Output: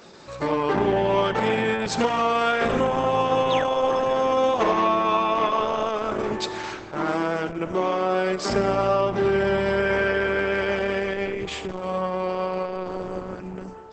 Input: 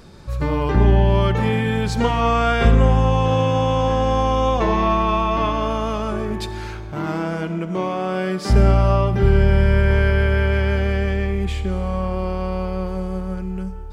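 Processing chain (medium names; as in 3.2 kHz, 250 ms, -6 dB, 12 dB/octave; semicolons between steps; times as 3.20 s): high-pass 310 Hz 12 dB/octave; painted sound fall, 3.50–3.78 s, 430–4200 Hz -32 dBFS; compression 10:1, threshold -18 dBFS, peak gain reduction 4.5 dB; trim +3 dB; Opus 10 kbps 48 kHz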